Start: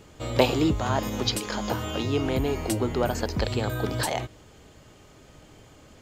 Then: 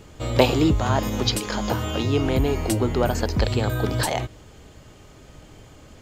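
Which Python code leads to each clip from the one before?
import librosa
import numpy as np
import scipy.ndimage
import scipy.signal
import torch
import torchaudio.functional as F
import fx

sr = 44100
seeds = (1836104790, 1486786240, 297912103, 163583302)

y = fx.low_shelf(x, sr, hz=100.0, db=6.0)
y = y * librosa.db_to_amplitude(3.0)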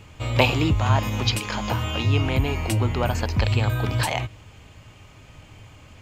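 y = fx.graphic_eq_15(x, sr, hz=(100, 400, 1000, 2500), db=(9, -4, 5, 10))
y = y * librosa.db_to_amplitude(-3.5)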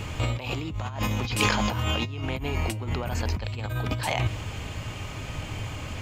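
y = fx.over_compress(x, sr, threshold_db=-32.0, ratio=-1.0)
y = y * librosa.db_to_amplitude(3.5)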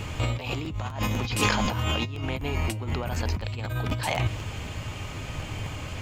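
y = fx.buffer_crackle(x, sr, first_s=0.39, period_s=0.25, block=512, kind='repeat')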